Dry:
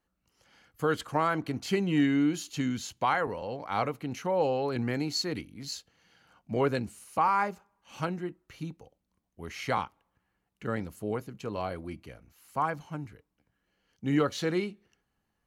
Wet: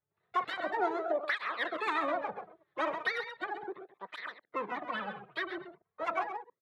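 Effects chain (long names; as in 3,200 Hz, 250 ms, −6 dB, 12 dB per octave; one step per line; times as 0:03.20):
delay that plays each chunk backwards 133 ms, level −10.5 dB
Butterworth low-pass 870 Hz 72 dB per octave
parametric band 110 Hz −10.5 dB 0.32 octaves
in parallel at −3.5 dB: soft clipping −27 dBFS, distortion −11 dB
on the sum: pitch-shifted copies added +12 semitones −10 dB
noise gate −51 dBFS, range −9 dB
on a send: single-tap delay 308 ms −10 dB
on the sum: wrong playback speed 33 rpm record played at 78 rpm
through-zero flanger with one copy inverted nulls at 0.36 Hz, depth 4.4 ms
level −3 dB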